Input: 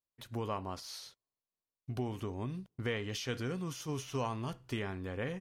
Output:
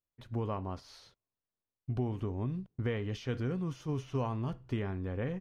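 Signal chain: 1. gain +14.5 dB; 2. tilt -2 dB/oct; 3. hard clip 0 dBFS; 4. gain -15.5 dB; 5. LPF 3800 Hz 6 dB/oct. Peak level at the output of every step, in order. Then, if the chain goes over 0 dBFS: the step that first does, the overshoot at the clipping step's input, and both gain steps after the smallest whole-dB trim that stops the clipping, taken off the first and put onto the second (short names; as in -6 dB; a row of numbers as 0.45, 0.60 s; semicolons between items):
-8.5, -5.5, -5.5, -21.0, -21.0 dBFS; no overload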